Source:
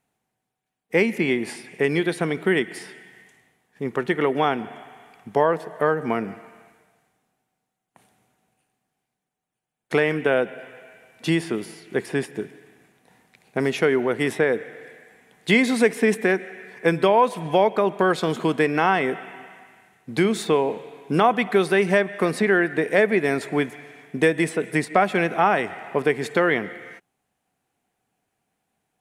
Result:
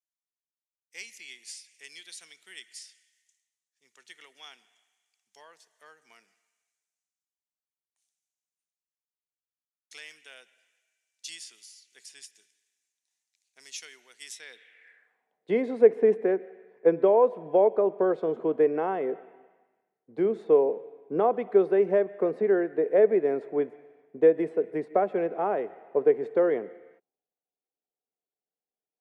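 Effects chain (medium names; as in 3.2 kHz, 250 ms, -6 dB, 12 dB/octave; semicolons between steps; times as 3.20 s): band-pass sweep 6.3 kHz -> 470 Hz, 14.36–15.50 s; three bands expanded up and down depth 40%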